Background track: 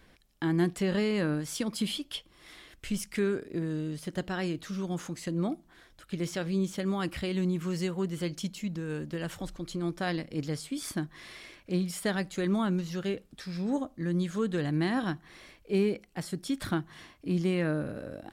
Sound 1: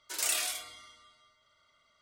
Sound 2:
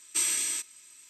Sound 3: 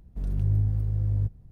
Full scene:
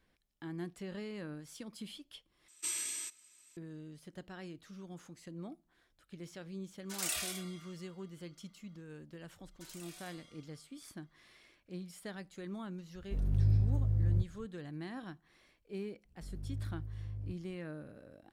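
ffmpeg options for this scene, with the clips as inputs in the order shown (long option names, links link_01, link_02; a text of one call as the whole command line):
ffmpeg -i bed.wav -i cue0.wav -i cue1.wav -i cue2.wav -filter_complex "[1:a]asplit=2[link_01][link_02];[3:a]asplit=2[link_03][link_04];[0:a]volume=-15dB[link_05];[2:a]acontrast=55[link_06];[link_02]acompressor=threshold=-38dB:ratio=6:attack=3.2:release=140:knee=1:detection=peak[link_07];[link_05]asplit=2[link_08][link_09];[link_08]atrim=end=2.484[link_10];[link_06]atrim=end=1.09,asetpts=PTS-STARTPTS,volume=-16dB[link_11];[link_09]atrim=start=3.566[link_12];[link_01]atrim=end=2.01,asetpts=PTS-STARTPTS,volume=-6dB,afade=type=in:duration=0.004:curve=hsin,afade=type=out:start_time=2.006:duration=0.004:curve=hsin,adelay=6800[link_13];[link_07]atrim=end=2.01,asetpts=PTS-STARTPTS,volume=-12dB,afade=type=in:duration=0.004:curve=hsin,afade=type=out:start_time=2.006:duration=0.004:curve=hsin,adelay=9510[link_14];[link_03]atrim=end=1.51,asetpts=PTS-STARTPTS,volume=-4dB,afade=type=in:duration=0.004:curve=hsin,afade=type=out:start_time=1.506:duration=0.004:curve=hsin,adelay=12950[link_15];[link_04]atrim=end=1.51,asetpts=PTS-STARTPTS,volume=-16.5dB,afade=type=in:duration=0.004:curve=hsin,afade=type=out:start_time=1.506:duration=0.004:curve=hsin,adelay=16050[link_16];[link_10][link_11]acrossfade=duration=0.004:curve1=hsin:curve2=hsin[link_17];[link_17][link_12]acrossfade=duration=0.004:curve1=hsin:curve2=hsin[link_18];[link_18][link_13][link_14][link_15][link_16]amix=inputs=5:normalize=0" out.wav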